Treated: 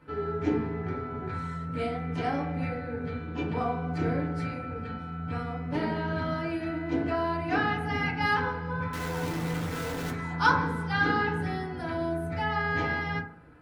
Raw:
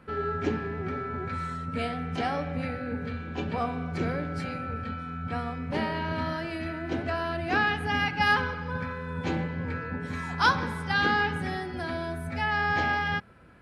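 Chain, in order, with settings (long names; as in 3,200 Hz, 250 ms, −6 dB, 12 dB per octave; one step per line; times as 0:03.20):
0:08.93–0:10.11: sign of each sample alone
feedback delay network reverb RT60 0.53 s, low-frequency decay 1.05×, high-frequency decay 0.3×, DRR −4.5 dB
level −7 dB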